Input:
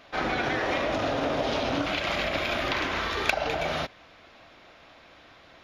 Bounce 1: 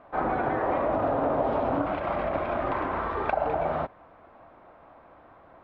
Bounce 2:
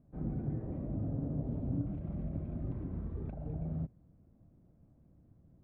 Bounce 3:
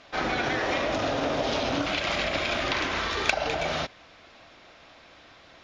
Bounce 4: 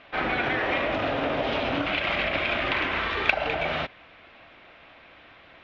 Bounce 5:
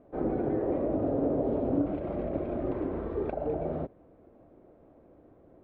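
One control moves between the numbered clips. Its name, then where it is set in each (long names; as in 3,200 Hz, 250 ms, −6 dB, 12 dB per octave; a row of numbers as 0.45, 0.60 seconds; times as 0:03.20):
low-pass with resonance, frequency: 1,000, 160, 6,700, 2,700, 410 Hertz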